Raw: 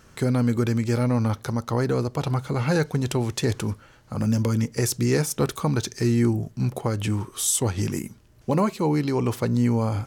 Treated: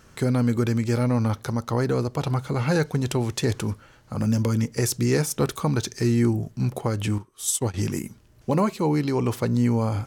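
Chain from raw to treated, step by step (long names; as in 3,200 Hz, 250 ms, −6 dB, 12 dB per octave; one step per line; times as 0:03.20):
0:07.18–0:07.74: expander for the loud parts 2.5 to 1, over −33 dBFS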